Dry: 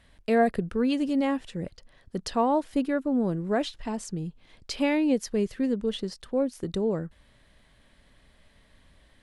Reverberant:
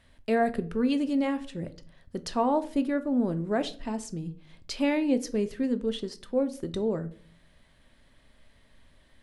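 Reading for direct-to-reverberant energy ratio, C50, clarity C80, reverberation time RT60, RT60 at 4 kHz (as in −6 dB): 10.0 dB, 17.0 dB, 21.5 dB, 0.45 s, 0.30 s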